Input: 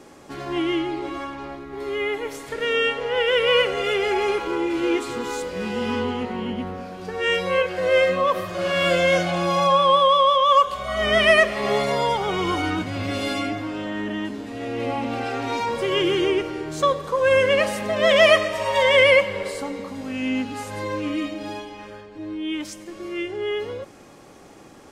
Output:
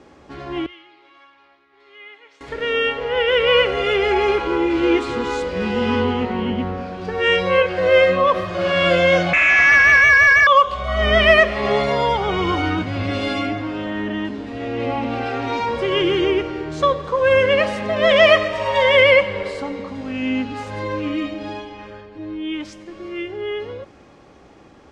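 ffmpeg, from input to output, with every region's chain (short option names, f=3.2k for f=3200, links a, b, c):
-filter_complex "[0:a]asettb=1/sr,asplit=3[a][b][c];[a]atrim=end=0.664[d];[b]atrim=start=0.66:end=2.41,asetpts=PTS-STARTPTS,afade=t=in:d=0.004:c=qsin,afade=t=out:st=1.746:d=0.004:c=qsin,lowpass=3.2k,aderivative[e];[c]atrim=start=2.406[f];[d][e]acrossfade=d=0.004:c1=hsin:c2=qsin[g];[g][f]acrossfade=d=0.004:c1=qsin:c2=hsin,asettb=1/sr,asplit=3[h][i][j];[h]atrim=end=9.334[k];[i]atrim=start=9.33:end=10.47,asetpts=PTS-STARTPTS,afade=t=in:d=0.004:c=qsin,afade=t=out:st=1.136:d=0.004:c=qsin,lowpass=f=2.4k:t=q:w=0.5098,lowpass=f=2.4k:t=q:w=0.6013,lowpass=f=2.4k:t=q:w=0.9,lowpass=f=2.4k:t=q:w=2.563,afreqshift=-2800,asplit=2[l][m];[m]highpass=f=720:p=1,volume=19dB,asoftclip=type=tanh:threshold=-7dB[n];[l][n]amix=inputs=2:normalize=0,lowpass=f=1.9k:p=1,volume=-6dB[o];[j]atrim=start=10.466[p];[k][o]acrossfade=d=0.004:c1=hsin:c2=qsin[q];[q][p]acrossfade=d=0.004:c1=qsin:c2=hsin,lowpass=4.4k,equalizer=f=66:t=o:w=0.61:g=10.5,dynaudnorm=f=740:g=9:m=11.5dB,volume=-1dB"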